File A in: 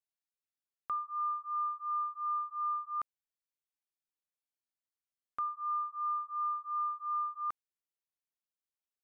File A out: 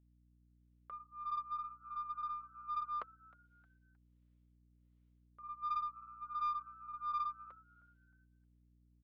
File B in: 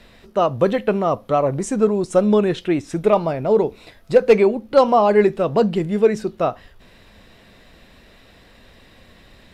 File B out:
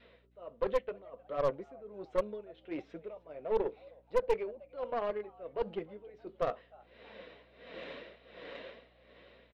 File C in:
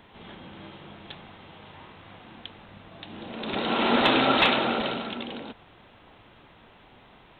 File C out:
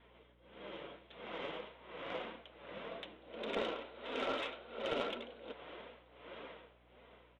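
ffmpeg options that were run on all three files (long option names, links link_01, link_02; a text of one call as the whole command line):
ffmpeg -i in.wav -filter_complex "[0:a]adynamicequalizer=threshold=0.0316:dfrequency=530:dqfactor=3.1:tfrequency=530:tqfactor=3.1:attack=5:release=100:ratio=0.375:range=1.5:mode=cutabove:tftype=bell,dynaudnorm=framelen=110:gausssize=17:maxgain=16dB,alimiter=limit=-7.5dB:level=0:latency=1:release=428,areverse,acompressor=threshold=-26dB:ratio=5,areverse,highpass=410,equalizer=frequency=510:width_type=q:width=4:gain=7,equalizer=frequency=810:width_type=q:width=4:gain=-10,equalizer=frequency=1200:width_type=q:width=4:gain=-4,equalizer=frequency=1700:width_type=q:width=4:gain=-6,equalizer=frequency=2600:width_type=q:width=4:gain=-4,lowpass=frequency=3100:width=0.5412,lowpass=frequency=3100:width=1.3066,tremolo=f=1.4:d=0.89,flanger=delay=4.2:depth=2.9:regen=-33:speed=1.7:shape=sinusoidal,aeval=exprs='val(0)+0.000501*(sin(2*PI*60*n/s)+sin(2*PI*2*60*n/s)/2+sin(2*PI*3*60*n/s)/3+sin(2*PI*4*60*n/s)/4+sin(2*PI*5*60*n/s)/5)':channel_layout=same,asplit=4[link_01][link_02][link_03][link_04];[link_02]adelay=311,afreqshift=110,volume=-22dB[link_05];[link_03]adelay=622,afreqshift=220,volume=-30.2dB[link_06];[link_04]adelay=933,afreqshift=330,volume=-38.4dB[link_07];[link_01][link_05][link_06][link_07]amix=inputs=4:normalize=0,aeval=exprs='0.075*(cos(1*acos(clip(val(0)/0.075,-1,1)))-cos(1*PI/2))+0.0237*(cos(2*acos(clip(val(0)/0.075,-1,1)))-cos(2*PI/2))+0.00211*(cos(7*acos(clip(val(0)/0.075,-1,1)))-cos(7*PI/2))+0.00237*(cos(8*acos(clip(val(0)/0.075,-1,1)))-cos(8*PI/2))':channel_layout=same" out.wav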